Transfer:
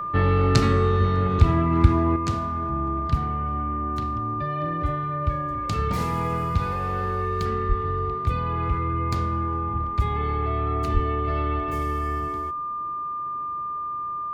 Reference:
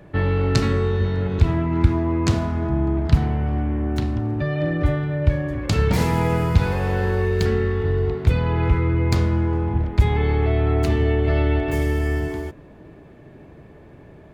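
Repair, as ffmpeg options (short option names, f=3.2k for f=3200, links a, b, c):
-filter_complex "[0:a]bandreject=f=1.2k:w=30,asplit=3[a][b][c];[a]afade=t=out:st=7.68:d=0.02[d];[b]highpass=f=140:w=0.5412,highpass=f=140:w=1.3066,afade=t=in:st=7.68:d=0.02,afade=t=out:st=7.8:d=0.02[e];[c]afade=t=in:st=7.8:d=0.02[f];[d][e][f]amix=inputs=3:normalize=0,asplit=3[g][h][i];[g]afade=t=out:st=10.93:d=0.02[j];[h]highpass=f=140:w=0.5412,highpass=f=140:w=1.3066,afade=t=in:st=10.93:d=0.02,afade=t=out:st=11.05:d=0.02[k];[i]afade=t=in:st=11.05:d=0.02[l];[j][k][l]amix=inputs=3:normalize=0,asetnsamples=n=441:p=0,asendcmd='2.16 volume volume 7.5dB',volume=0dB"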